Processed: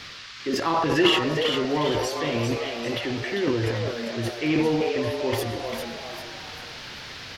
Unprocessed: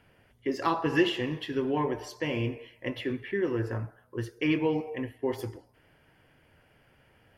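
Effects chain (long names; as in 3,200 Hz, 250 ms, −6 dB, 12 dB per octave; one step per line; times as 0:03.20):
transient designer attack −2 dB, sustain +12 dB
reversed playback
upward compression, threshold −35 dBFS
reversed playback
noise in a band 1,100–5,100 Hz −44 dBFS
echo with shifted repeats 397 ms, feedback 44%, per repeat +120 Hz, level −6.5 dB
level +2.5 dB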